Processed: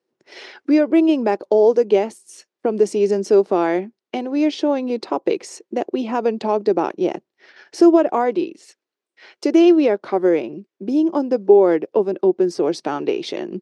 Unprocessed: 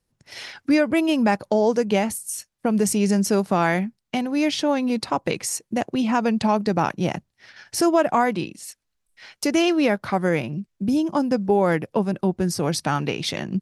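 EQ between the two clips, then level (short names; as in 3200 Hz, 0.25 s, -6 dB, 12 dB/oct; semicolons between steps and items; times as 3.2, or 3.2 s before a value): dynamic EQ 1700 Hz, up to -5 dB, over -37 dBFS, Q 0.94; resonant high-pass 370 Hz, resonance Q 3.7; air absorption 110 m; 0.0 dB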